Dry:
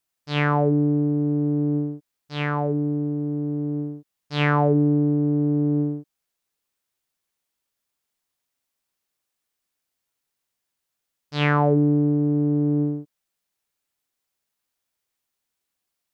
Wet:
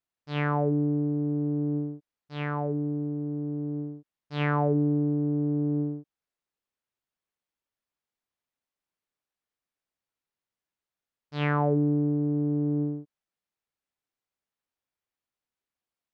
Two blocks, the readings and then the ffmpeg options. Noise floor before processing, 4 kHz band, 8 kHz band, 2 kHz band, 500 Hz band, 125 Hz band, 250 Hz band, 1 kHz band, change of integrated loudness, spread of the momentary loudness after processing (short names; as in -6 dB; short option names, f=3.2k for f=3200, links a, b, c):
-82 dBFS, -10.0 dB, n/a, -7.5 dB, -5.5 dB, -5.5 dB, -5.5 dB, -6.0 dB, -5.5 dB, 13 LU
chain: -af "lowpass=f=2.3k:p=1,volume=-5.5dB"